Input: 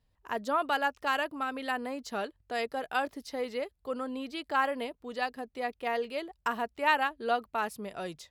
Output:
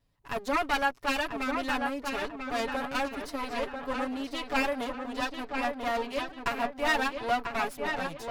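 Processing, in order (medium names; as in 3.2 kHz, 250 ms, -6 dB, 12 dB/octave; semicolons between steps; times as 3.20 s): comb filter that takes the minimum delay 7.1 ms; wow and flutter 29 cents; on a send: filtered feedback delay 991 ms, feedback 43%, low-pass 3.3 kHz, level -5 dB; on the sum: trim +2.5 dB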